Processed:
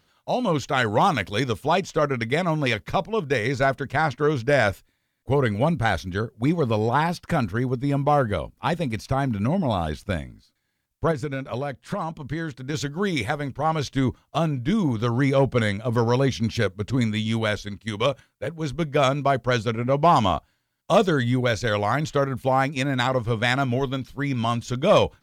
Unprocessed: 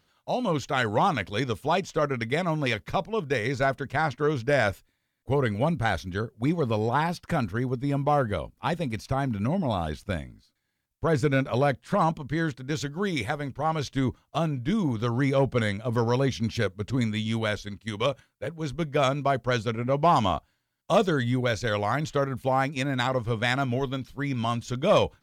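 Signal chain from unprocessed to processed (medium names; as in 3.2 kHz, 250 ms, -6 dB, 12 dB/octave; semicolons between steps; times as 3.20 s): 0.99–1.51 s: treble shelf 4.9 kHz -> 8.5 kHz +6 dB; 11.11–12.74 s: compression 10:1, threshold -28 dBFS, peak gain reduction 10.5 dB; trim +3.5 dB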